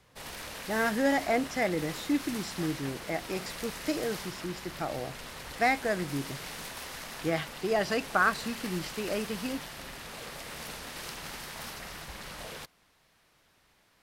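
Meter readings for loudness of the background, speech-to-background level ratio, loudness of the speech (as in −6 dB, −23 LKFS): −40.5 LKFS, 9.0 dB, −31.5 LKFS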